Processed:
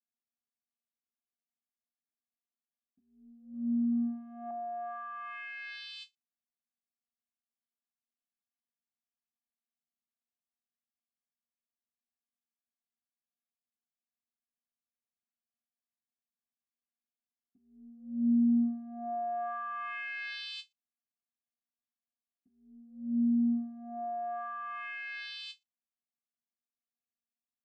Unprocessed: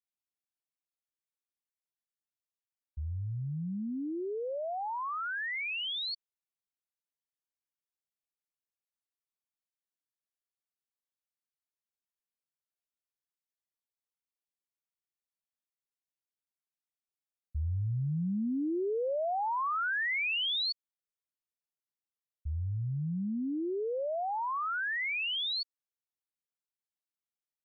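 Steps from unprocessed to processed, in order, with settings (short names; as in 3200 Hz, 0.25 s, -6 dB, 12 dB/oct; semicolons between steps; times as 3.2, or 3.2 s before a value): vocoder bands 8, square 236 Hz; 3.54–4.51 band shelf 1900 Hz +11 dB 2.5 oct; ending taper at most 420 dB/s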